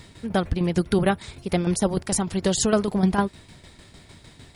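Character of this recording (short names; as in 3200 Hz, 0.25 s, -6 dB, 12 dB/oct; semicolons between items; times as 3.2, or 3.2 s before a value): a quantiser's noise floor 12-bit, dither triangular; tremolo saw down 6.6 Hz, depth 65%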